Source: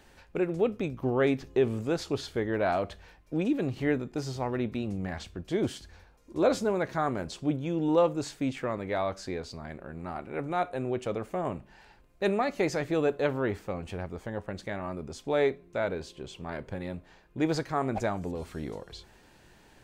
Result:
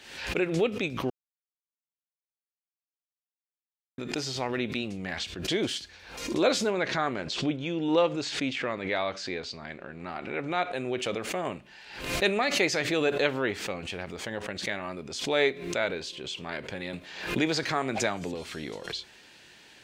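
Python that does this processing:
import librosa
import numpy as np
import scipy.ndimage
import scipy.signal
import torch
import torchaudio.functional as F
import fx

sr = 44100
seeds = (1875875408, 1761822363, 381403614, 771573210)

y = fx.air_absorb(x, sr, metres=75.0, at=(6.7, 10.74))
y = fx.band_squash(y, sr, depth_pct=40, at=(16.93, 18.34))
y = fx.edit(y, sr, fx.silence(start_s=1.1, length_s=2.88), tone=tone)
y = fx.weighting(y, sr, curve='D')
y = fx.pre_swell(y, sr, db_per_s=71.0)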